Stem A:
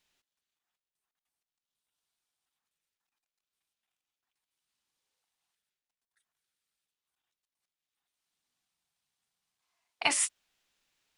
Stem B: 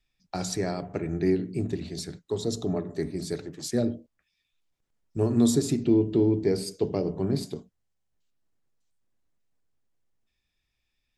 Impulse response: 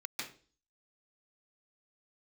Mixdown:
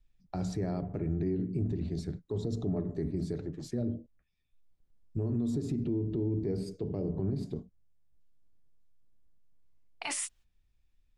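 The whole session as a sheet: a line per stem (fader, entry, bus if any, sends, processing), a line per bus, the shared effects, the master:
-3.0 dB, 0.00 s, no send, gate -51 dBFS, range -12 dB
-6.0 dB, 0.00 s, no send, compressor, threshold -25 dBFS, peak gain reduction 9 dB; tilt -3.5 dB/oct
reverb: off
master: limiter -24 dBFS, peak gain reduction 11 dB

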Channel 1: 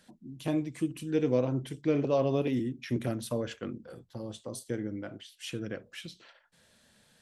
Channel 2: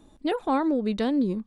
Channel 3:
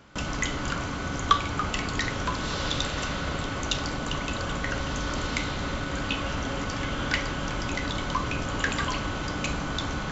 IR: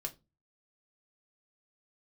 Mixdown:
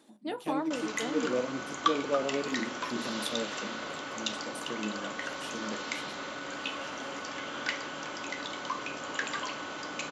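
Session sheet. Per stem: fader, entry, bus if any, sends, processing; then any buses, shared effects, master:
-0.5 dB, 0.00 s, no send, de-hum 49.24 Hz, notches 35; rotary speaker horn 5.5 Hz; bell 210 Hz +14 dB 0.29 oct
-6.0 dB, 0.00 s, send -6 dB, auto duck -8 dB, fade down 0.25 s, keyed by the first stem
-7.5 dB, 0.55 s, send -8.5 dB, dry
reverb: on, RT60 0.25 s, pre-delay 3 ms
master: HPF 340 Hz 12 dB/oct; bell 10000 Hz +2.5 dB 0.55 oct

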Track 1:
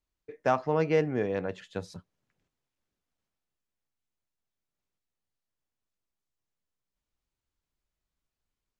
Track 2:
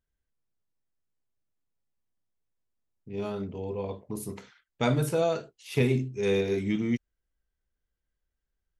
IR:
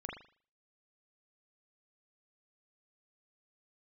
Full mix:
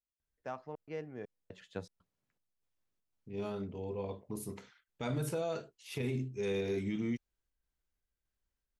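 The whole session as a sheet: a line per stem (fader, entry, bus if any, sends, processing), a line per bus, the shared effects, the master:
1.13 s -16.5 dB -> 1.74 s -6 dB, 0.00 s, no send, step gate "x..xxx.xx" 120 bpm -60 dB
-5.5 dB, 0.20 s, no send, limiter -21.5 dBFS, peak gain reduction 10 dB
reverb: off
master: dry

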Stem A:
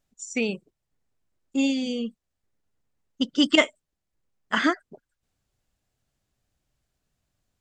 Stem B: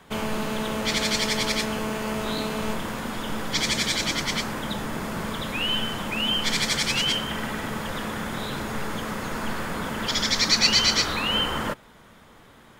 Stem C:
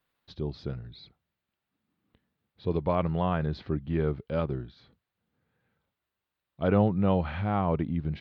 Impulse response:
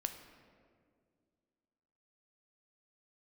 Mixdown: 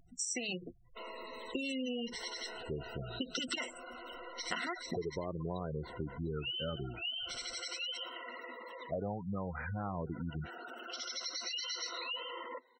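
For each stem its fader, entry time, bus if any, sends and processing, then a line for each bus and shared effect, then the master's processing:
-2.5 dB, 0.00 s, bus A, no send, limiter -16.5 dBFS, peak gain reduction 11 dB; AGC gain up to 8.5 dB; spectral compressor 2:1
-13.0 dB, 0.85 s, bus A, no send, HPF 350 Hz 24 dB/oct; limiter -17.5 dBFS, peak gain reduction 10.5 dB; cascading phaser falling 0.27 Hz
-7.5 dB, 2.30 s, no bus, no send, LFO bell 0.33 Hz 360–1800 Hz +9 dB
bus A: 0.0 dB, ripple EQ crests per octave 2, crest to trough 13 dB; compressor, threshold -27 dBFS, peak gain reduction 9.5 dB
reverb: off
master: upward compressor, threshold -55 dBFS; spectral gate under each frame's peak -15 dB strong; compressor 10:1, threshold -34 dBFS, peak gain reduction 11 dB

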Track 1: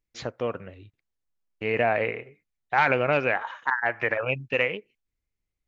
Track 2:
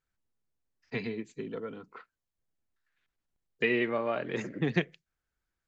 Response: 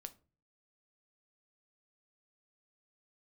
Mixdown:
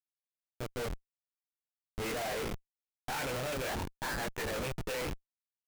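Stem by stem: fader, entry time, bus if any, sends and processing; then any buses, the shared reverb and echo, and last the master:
-3.5 dB, 0.35 s, no send, modulation noise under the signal 15 dB
-14.0 dB, 0.00 s, no send, dry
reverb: off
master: sample gate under -30 dBFS; chorus 0.7 Hz, delay 19.5 ms, depth 4.2 ms; Schmitt trigger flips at -39.5 dBFS

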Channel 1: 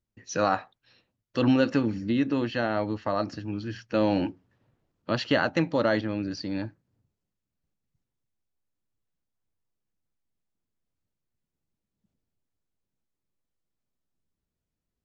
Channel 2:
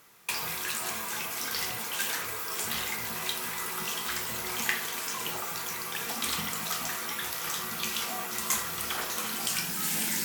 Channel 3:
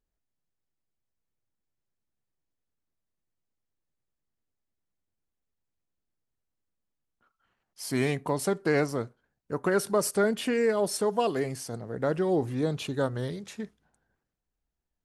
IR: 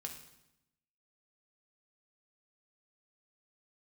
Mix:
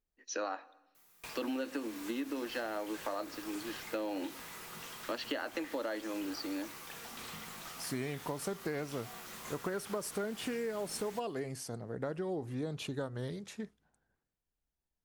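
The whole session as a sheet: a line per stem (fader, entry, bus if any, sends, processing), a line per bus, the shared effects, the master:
-5.0 dB, 0.00 s, send -14 dB, steep high-pass 260 Hz 48 dB/oct; gate -54 dBFS, range -18 dB
-16.0 dB, 0.95 s, send -3.5 dB, high shelf 7100 Hz +9.5 dB; slew limiter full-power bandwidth 130 Hz
-4.5 dB, 0.00 s, no send, dry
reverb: on, RT60 0.85 s, pre-delay 3 ms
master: compressor 6:1, threshold -34 dBFS, peak gain reduction 11.5 dB

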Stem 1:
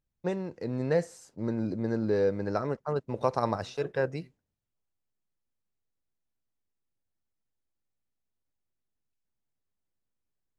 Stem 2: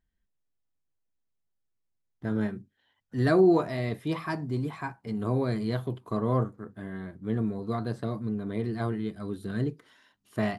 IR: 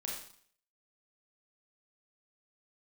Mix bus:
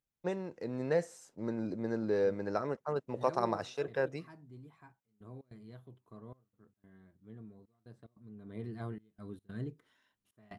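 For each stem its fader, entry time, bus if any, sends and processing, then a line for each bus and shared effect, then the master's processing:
-3.0 dB, 0.00 s, no send, HPF 210 Hz 6 dB/oct
8.26 s -23.5 dB -> 8.6 s -12.5 dB, 0.00 s, no send, low shelf 150 Hz +4.5 dB; step gate "x.xxxxxxxx..x" 147 bpm -24 dB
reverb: off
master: bell 4600 Hz -5 dB 0.21 oct

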